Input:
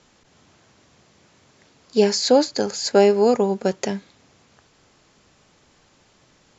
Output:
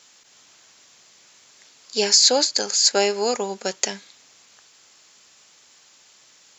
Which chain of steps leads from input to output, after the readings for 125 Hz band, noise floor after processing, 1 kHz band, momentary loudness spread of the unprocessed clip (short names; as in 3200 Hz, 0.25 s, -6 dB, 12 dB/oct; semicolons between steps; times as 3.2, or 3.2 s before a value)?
n/a, -54 dBFS, -2.5 dB, 11 LU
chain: tilt +4.5 dB/oct; gain -1.5 dB